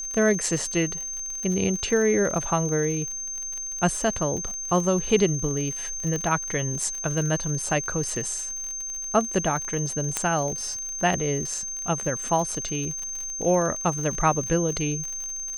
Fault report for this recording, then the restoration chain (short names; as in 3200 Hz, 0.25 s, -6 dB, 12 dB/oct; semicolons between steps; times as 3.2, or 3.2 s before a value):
crackle 53/s -30 dBFS
tone 6300 Hz -30 dBFS
6.16 pop -17 dBFS
10.17 pop -8 dBFS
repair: de-click; notch 6300 Hz, Q 30